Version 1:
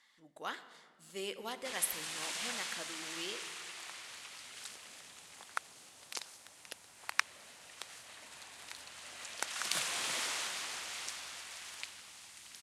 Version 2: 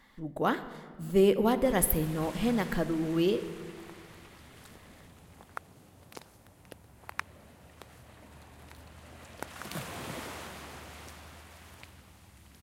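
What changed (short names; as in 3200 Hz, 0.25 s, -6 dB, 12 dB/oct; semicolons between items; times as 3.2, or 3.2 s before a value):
speech +12.0 dB; master: remove weighting filter ITU-R 468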